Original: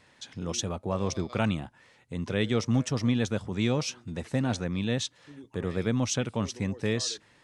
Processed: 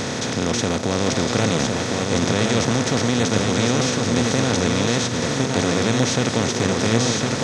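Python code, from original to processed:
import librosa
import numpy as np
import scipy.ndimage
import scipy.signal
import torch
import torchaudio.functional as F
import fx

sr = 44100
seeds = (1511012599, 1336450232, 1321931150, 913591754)

y = fx.bin_compress(x, sr, power=0.2)
y = y + 10.0 ** (-3.5 / 20.0) * np.pad(y, (int(1059 * sr / 1000.0), 0))[:len(y)]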